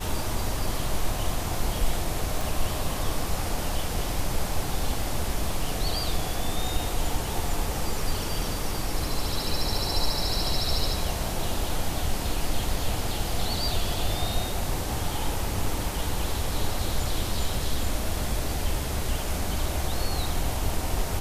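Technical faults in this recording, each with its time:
0:02.41: click

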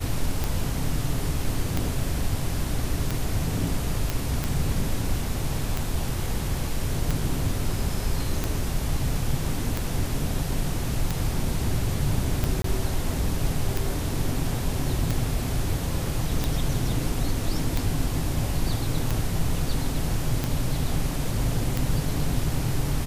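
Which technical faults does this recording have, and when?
scratch tick 45 rpm
0:04.10: click
0:12.62–0:12.64: drop-out 23 ms

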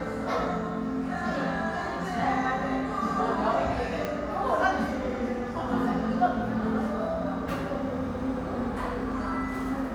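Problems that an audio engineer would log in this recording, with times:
0:04.05: click −17 dBFS

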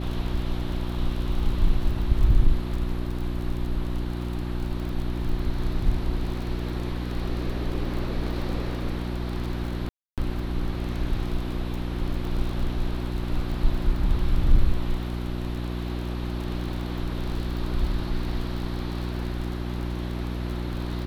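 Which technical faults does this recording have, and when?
surface crackle 38 per second −32 dBFS
mains hum 60 Hz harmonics 6 −30 dBFS
0:09.89–0:10.18: drop-out 287 ms

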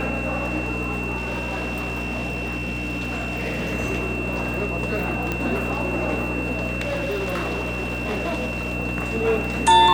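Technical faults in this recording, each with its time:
surface crackle 41 per second −32 dBFS
mains hum 60 Hz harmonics 5 −29 dBFS
whistle 2,700 Hz −29 dBFS
0:01.16–0:03.74: clipping −22.5 dBFS
0:05.32: click −11 dBFS
0:06.81–0:08.74: clipping −21.5 dBFS

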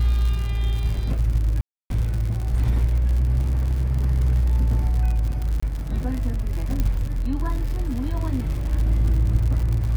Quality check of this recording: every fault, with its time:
surface crackle 95 per second −27 dBFS
0:01.61–0:01.90: drop-out 292 ms
0:05.60–0:05.62: drop-out 25 ms
0:06.80: click −11 dBFS

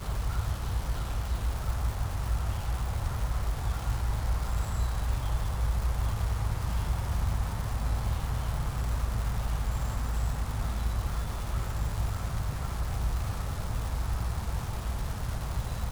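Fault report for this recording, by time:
surface crackle 580 per second −35 dBFS

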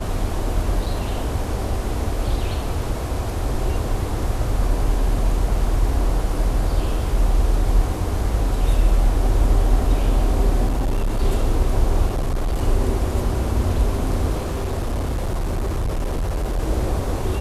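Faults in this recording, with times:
0:00.86: drop-out 4.6 ms
0:10.67–0:11.23: clipping −16.5 dBFS
0:12.06–0:12.61: clipping −17.5 dBFS
0:14.38–0:16.60: clipping −19 dBFS

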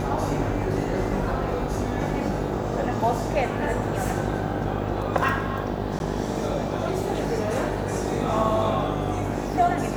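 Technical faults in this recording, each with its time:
mains buzz 50 Hz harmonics 17 −30 dBFS
0:05.99–0:06.00: drop-out 11 ms

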